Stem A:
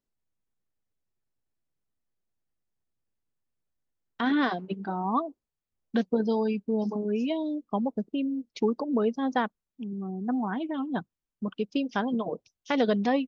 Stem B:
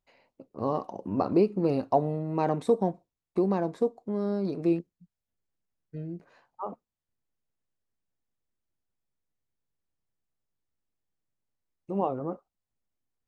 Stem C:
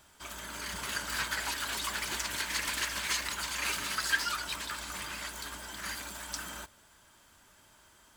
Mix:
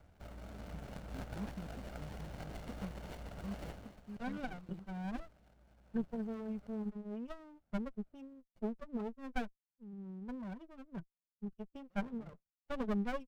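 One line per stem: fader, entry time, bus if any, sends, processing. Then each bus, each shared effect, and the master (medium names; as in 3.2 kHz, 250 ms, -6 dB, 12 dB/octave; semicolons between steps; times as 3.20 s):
-8.5 dB, 0.00 s, no send, no echo send, expander on every frequency bin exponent 2; Bessel low-pass 1.6 kHz, order 4; comb 5.2 ms, depth 55%
-14.0 dB, 0.00 s, no send, no echo send, LFO band-pass square 4.8 Hz 200–3100 Hz
+2.0 dB, 0.00 s, no send, echo send -18.5 dB, median filter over 25 samples; compression 1.5:1, threshold -54 dBFS, peak gain reduction 7.5 dB; auto duck -23 dB, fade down 0.50 s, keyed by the first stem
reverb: none
echo: delay 250 ms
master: comb 1.4 ms, depth 73%; sliding maximum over 33 samples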